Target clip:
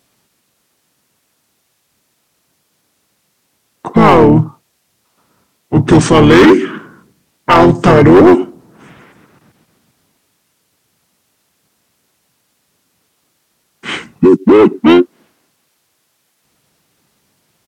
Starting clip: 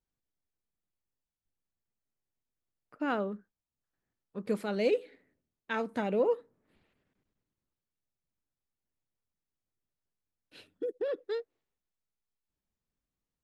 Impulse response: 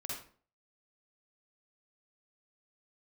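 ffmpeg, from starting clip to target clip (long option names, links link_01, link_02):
-filter_complex "[0:a]highpass=210,asplit=2[link_01][link_02];[link_02]asetrate=33038,aresample=44100,atempo=1.33484,volume=-4dB[link_03];[link_01][link_03]amix=inputs=2:normalize=0,asplit=2[link_04][link_05];[link_05]volume=28dB,asoftclip=hard,volume=-28dB,volume=-4dB[link_06];[link_04][link_06]amix=inputs=2:normalize=0,apsyclip=29dB,asetrate=33516,aresample=44100,volume=-1.5dB"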